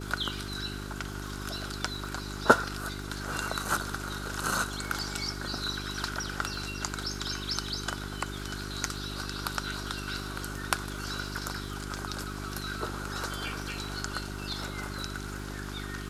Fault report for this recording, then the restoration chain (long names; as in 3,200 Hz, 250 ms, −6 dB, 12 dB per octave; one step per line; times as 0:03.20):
surface crackle 42 per second −43 dBFS
mains hum 50 Hz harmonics 8 −39 dBFS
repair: click removal
hum removal 50 Hz, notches 8